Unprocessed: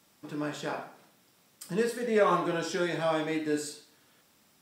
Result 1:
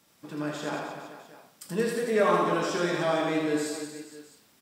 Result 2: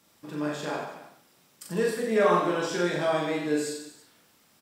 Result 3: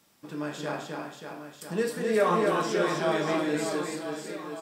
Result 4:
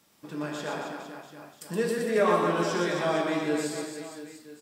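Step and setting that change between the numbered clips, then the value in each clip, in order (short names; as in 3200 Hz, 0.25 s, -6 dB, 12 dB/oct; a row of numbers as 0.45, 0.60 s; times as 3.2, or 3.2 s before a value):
reverse bouncing-ball echo, first gap: 80, 40, 260, 120 ms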